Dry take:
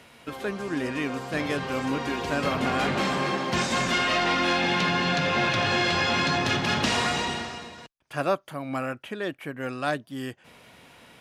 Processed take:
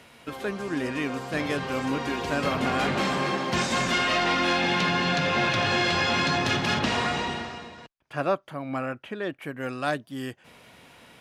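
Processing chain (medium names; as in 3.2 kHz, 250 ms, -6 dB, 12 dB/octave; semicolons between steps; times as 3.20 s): 6.79–9.42 s: treble shelf 5.6 kHz -12 dB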